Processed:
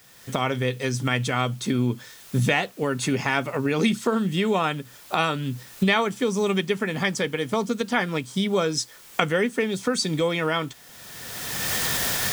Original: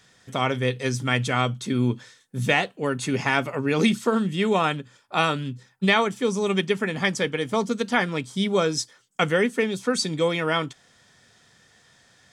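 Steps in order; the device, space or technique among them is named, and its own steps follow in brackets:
cheap recorder with automatic gain (white noise bed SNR 30 dB; camcorder AGC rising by 26 dB per second)
level −1.5 dB

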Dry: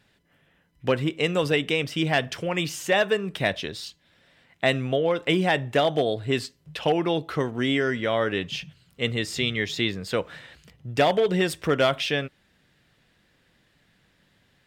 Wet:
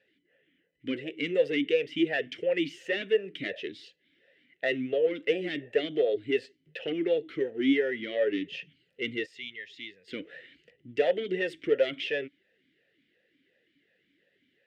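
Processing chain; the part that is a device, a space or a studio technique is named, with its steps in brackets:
0:09.26–0:10.08: guitar amp tone stack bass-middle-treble 5-5-5
talk box (tube saturation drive 15 dB, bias 0.45; formant filter swept between two vowels e-i 2.8 Hz)
level +7.5 dB

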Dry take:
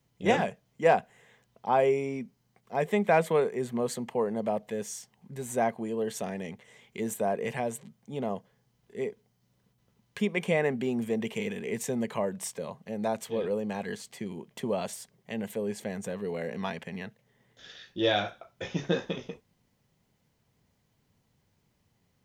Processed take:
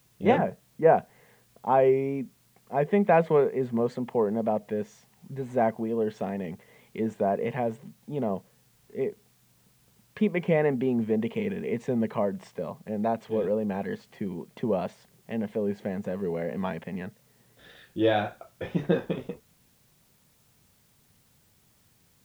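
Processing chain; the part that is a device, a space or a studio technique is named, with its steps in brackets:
0:00.38–0:00.95: low-pass filter 1,800 Hz
cassette deck with a dirty head (head-to-tape spacing loss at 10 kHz 34 dB; tape wow and flutter; white noise bed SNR 37 dB)
level +5 dB

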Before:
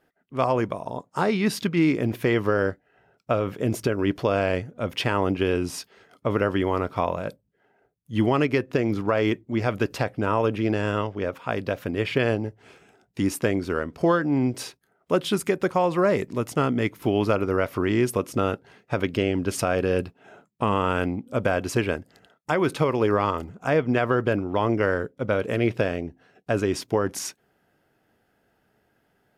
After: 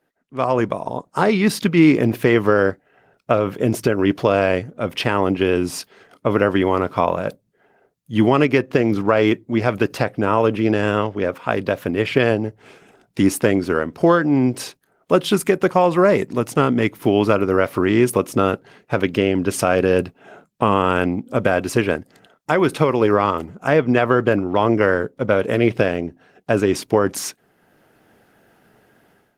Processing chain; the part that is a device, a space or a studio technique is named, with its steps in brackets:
video call (high-pass filter 110 Hz 12 dB per octave; automatic gain control gain up to 15 dB; level −1 dB; Opus 20 kbit/s 48,000 Hz)

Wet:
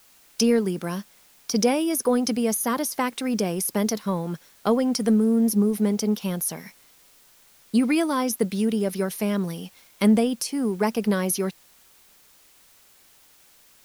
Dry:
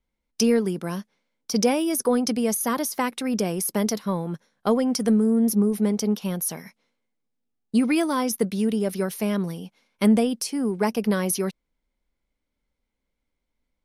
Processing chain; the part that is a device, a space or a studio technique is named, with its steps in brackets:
noise-reduction cassette on a plain deck (one half of a high-frequency compander encoder only; tape wow and flutter 13 cents; white noise bed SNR 31 dB)

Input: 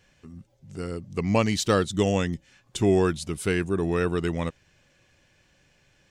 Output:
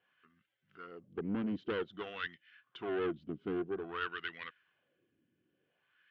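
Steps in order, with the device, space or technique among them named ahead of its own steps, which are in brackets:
wah-wah guitar rig (LFO wah 0.52 Hz 270–1,900 Hz, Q 2.3; tube saturation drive 29 dB, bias 0.6; loudspeaker in its box 87–4,000 Hz, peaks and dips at 580 Hz −9 dB, 850 Hz −10 dB, 1,500 Hz +5 dB, 3,100 Hz +10 dB)

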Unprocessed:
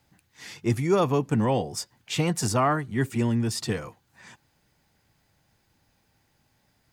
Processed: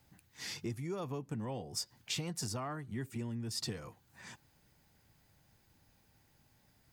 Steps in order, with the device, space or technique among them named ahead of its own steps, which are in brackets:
ASMR close-microphone chain (low-shelf EQ 240 Hz +4 dB; downward compressor 5 to 1, threshold −35 dBFS, peak gain reduction 17 dB; high-shelf EQ 11,000 Hz +8 dB)
dynamic equaliser 4,900 Hz, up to +6 dB, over −56 dBFS, Q 1.7
level −3.5 dB

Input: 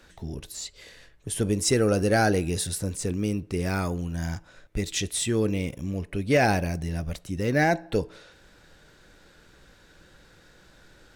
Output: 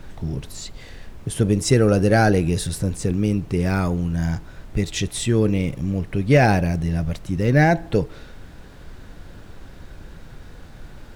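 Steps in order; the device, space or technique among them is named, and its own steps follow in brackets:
car interior (parametric band 140 Hz +7.5 dB 0.75 octaves; high-shelf EQ 4,500 Hz −6.5 dB; brown noise bed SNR 16 dB)
level +4.5 dB

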